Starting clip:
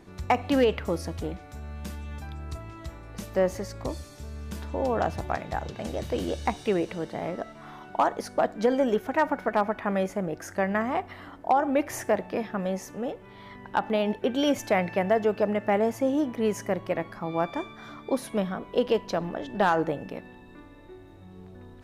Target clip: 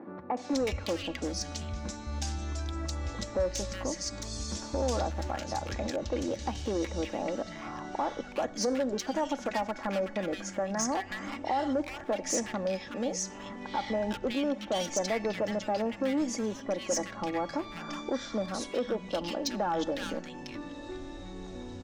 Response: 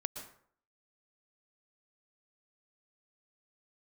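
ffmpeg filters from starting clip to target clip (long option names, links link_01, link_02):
-filter_complex "[0:a]lowpass=frequency=7900:width=0.5412,lowpass=frequency=7900:width=1.3066,equalizer=frequency=6100:width=0.99:gain=12,aecho=1:1:3.6:0.49,acompressor=threshold=-43dB:ratio=2,volume=31.5dB,asoftclip=hard,volume=-31.5dB,acrossover=split=160|1500[link_01][link_02][link_03];[link_03]adelay=370[link_04];[link_01]adelay=530[link_05];[link_05][link_02][link_04]amix=inputs=3:normalize=0,asettb=1/sr,asplit=3[link_06][link_07][link_08];[link_06]atrim=end=5.964[link_09];[link_07]atrim=start=5.96:end=8.57,asetpts=PTS-STARTPTS,afade=type=in:duration=0.004:curve=qsin,afade=type=out:start_time=2.606:duration=0.004:curve=qsin,adynamicequalizer=threshold=0.00112:dfrequency=2800:dqfactor=0.7:tfrequency=2800:tqfactor=0.7:attack=5:release=100:ratio=0.375:range=3.5:mode=cutabove:tftype=highshelf[link_10];[link_08]atrim=start=8.566[link_11];[link_09][link_10]acrossfade=duration=0.004:curve1=hsin:curve2=qsin[link_12];[link_12][link_11]acrossfade=duration=0.004:curve1=qsin:curve2=hsin,volume=7.5dB"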